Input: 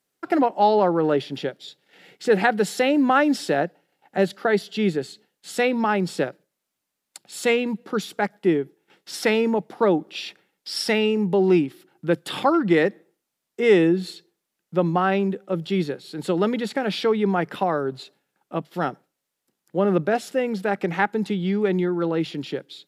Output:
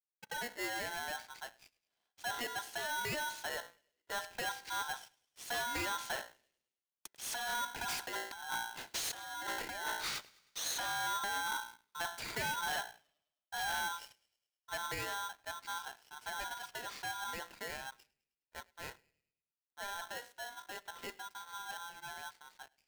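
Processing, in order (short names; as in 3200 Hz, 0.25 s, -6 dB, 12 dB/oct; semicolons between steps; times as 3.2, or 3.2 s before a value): Doppler pass-by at 8.81, 5 m/s, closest 1.3 m; de-hum 58.32 Hz, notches 17; negative-ratio compressor -41 dBFS, ratio -1; sample leveller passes 3; on a send: thinning echo 0.104 s, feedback 54%, high-pass 800 Hz, level -21.5 dB; on the sum: polarity switched at an audio rate 1200 Hz; gain -5.5 dB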